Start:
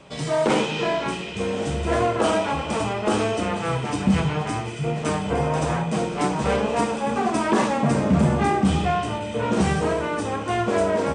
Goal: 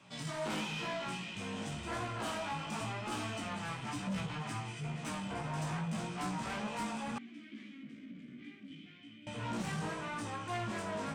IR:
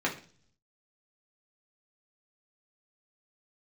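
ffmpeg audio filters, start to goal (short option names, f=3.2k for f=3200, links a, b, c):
-filter_complex "[0:a]highpass=f=100:w=0.5412,highpass=f=100:w=1.3066,equalizer=f=460:w=1.5:g=-14,asoftclip=type=tanh:threshold=-26dB,flanger=delay=16.5:depth=2.7:speed=0.96,asettb=1/sr,asplit=3[a][b][c];[a]atrim=end=7.184[d];[b]atrim=start=7.18:end=9.27,asetpts=PTS-STARTPTS,afade=t=in:d=0.004:c=qsin,afade=t=out:st=2.086:d=0.004:c=qsin,asplit=3[e][f][g];[e]bandpass=f=270:t=q:w=8,volume=0dB[h];[f]bandpass=f=2.29k:t=q:w=8,volume=-6dB[i];[g]bandpass=f=3.01k:t=q:w=8,volume=-9dB[j];[h][i][j]amix=inputs=3:normalize=0[k];[c]atrim=start=9.266[l];[d][k]acrossfade=d=0.004:c1=hsin:c2=qsin[m];[m][l]acrossfade=d=0.004:c1=qsin:c2=hsin,volume=-5dB"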